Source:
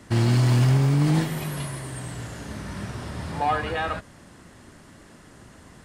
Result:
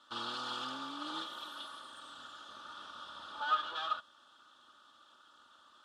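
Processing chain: minimum comb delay 3.4 ms; double band-pass 2100 Hz, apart 1.4 oct; gain +2 dB

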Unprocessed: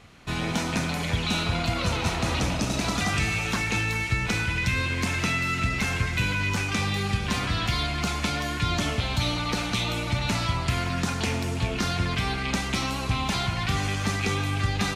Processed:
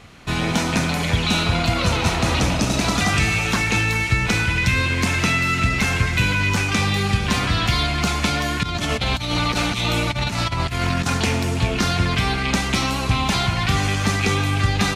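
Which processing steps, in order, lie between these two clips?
8.63–11.18 negative-ratio compressor -28 dBFS, ratio -0.5; gain +6.5 dB

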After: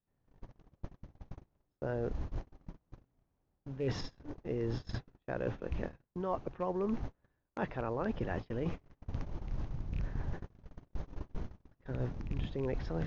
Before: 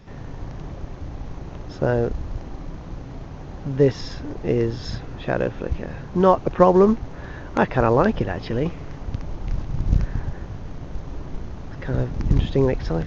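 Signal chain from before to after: rattling part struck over -15 dBFS, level -22 dBFS; notches 50/100/150 Hz; gate -28 dBFS, range -39 dB; high shelf 5000 Hz -6 dB; reverse; compressor 10:1, threshold -28 dBFS, peak gain reduction 20 dB; reverse; gain -4 dB

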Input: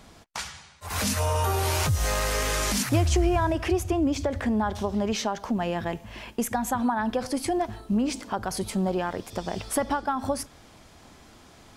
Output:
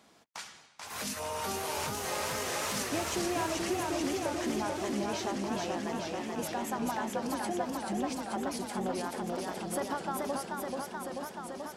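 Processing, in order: octaver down 2 oct, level -2 dB; HPF 220 Hz 12 dB/oct; warbling echo 0.433 s, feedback 79%, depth 120 cents, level -3 dB; gain -9 dB

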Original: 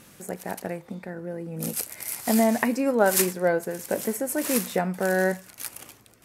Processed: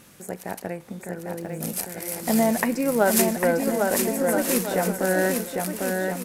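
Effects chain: added harmonics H 6 -35 dB, 8 -31 dB, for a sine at -6 dBFS; bouncing-ball echo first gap 0.8 s, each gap 0.65×, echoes 5; 1.37–3.3 short-mantissa float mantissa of 4-bit

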